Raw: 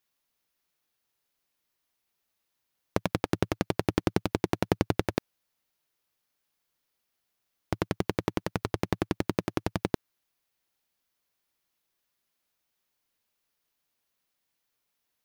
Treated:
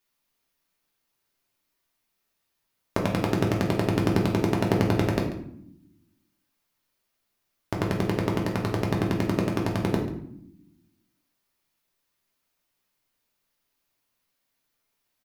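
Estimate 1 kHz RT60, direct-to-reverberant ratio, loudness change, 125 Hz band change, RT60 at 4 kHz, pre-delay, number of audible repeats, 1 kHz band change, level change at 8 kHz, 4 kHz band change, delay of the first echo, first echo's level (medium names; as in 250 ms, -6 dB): 0.65 s, -1.0 dB, +5.0 dB, +7.0 dB, 0.50 s, 3 ms, 1, +3.5 dB, +2.5 dB, +2.5 dB, 139 ms, -14.5 dB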